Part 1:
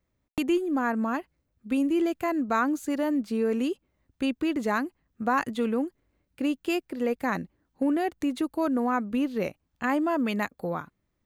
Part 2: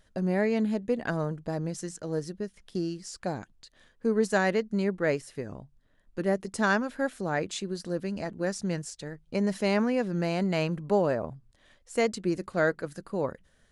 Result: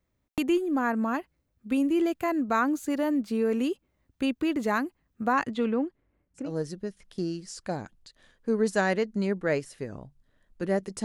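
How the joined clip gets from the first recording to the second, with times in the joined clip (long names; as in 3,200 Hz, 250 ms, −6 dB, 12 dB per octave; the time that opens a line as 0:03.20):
part 1
0:05.32–0:06.52: low-pass filter 7,700 Hz → 1,400 Hz
0:06.43: continue with part 2 from 0:02.00, crossfade 0.18 s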